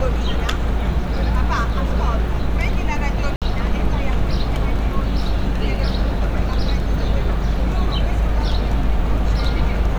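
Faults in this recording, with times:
0:03.36–0:03.42: drop-out 57 ms

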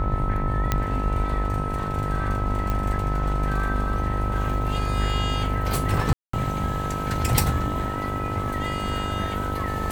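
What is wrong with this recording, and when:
mains buzz 50 Hz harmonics 21 −29 dBFS
whistle 1,300 Hz −30 dBFS
0:00.72: click −7 dBFS
0:02.70: click −14 dBFS
0:06.13–0:06.33: drop-out 204 ms

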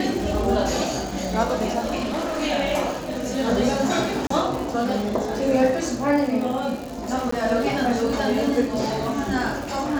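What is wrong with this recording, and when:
surface crackle 190 per second −28 dBFS
0:02.00–0:02.43: clipping −22.5 dBFS
0:04.27–0:04.30: drop-out 34 ms
0:07.31–0:07.32: drop-out 14 ms

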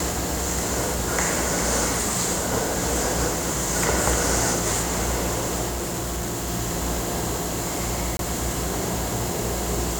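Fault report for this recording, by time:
0:05.68–0:06.49: clipping −24 dBFS
0:08.17–0:08.19: drop-out 22 ms

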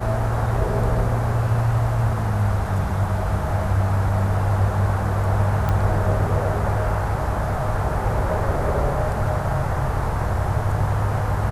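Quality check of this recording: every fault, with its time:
0:05.69: click −11 dBFS

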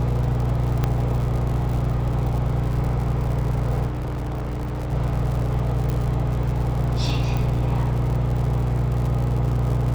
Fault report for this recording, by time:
surface crackle 130 per second −29 dBFS
mains hum 60 Hz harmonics 8 −25 dBFS
0:00.84: click −9 dBFS
0:03.87–0:04.93: clipping −24 dBFS
0:05.90: click −14 dBFS
0:07.37: click −14 dBFS

